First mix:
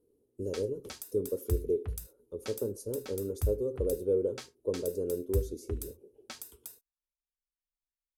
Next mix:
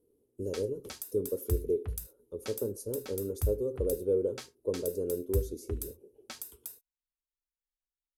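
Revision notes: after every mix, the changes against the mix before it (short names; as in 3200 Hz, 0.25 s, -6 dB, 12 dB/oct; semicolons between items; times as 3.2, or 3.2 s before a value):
master: add bell 12000 Hz +4.5 dB 0.59 oct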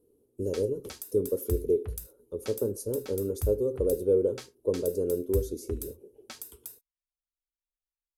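speech +4.5 dB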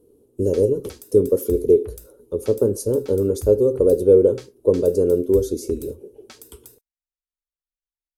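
speech +11.0 dB; master: add bell 12000 Hz -4.5 dB 0.59 oct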